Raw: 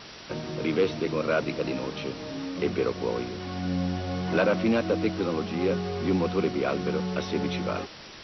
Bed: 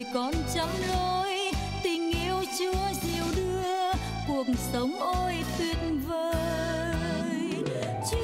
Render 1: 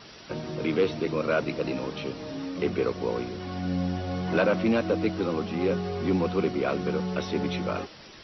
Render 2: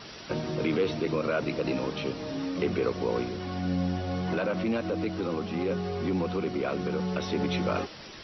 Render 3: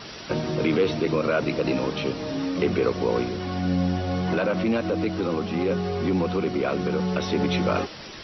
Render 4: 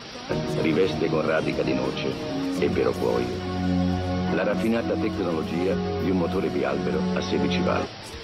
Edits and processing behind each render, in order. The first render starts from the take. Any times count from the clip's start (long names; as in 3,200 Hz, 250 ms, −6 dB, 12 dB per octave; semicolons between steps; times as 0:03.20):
broadband denoise 6 dB, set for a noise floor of −45 dBFS
brickwall limiter −19.5 dBFS, peak gain reduction 7.5 dB; speech leveller within 5 dB 2 s
level +5 dB
mix in bed −12 dB